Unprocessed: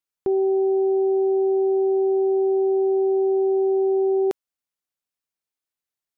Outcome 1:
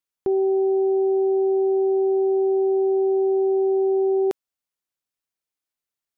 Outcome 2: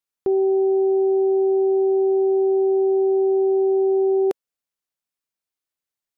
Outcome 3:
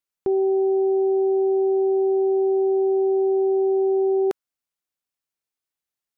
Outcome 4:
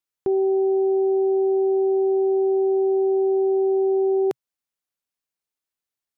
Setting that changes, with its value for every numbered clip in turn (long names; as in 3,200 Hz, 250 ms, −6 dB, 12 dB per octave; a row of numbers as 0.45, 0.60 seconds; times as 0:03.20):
dynamic equaliser, frequency: 6,300, 480, 1,400, 130 Hertz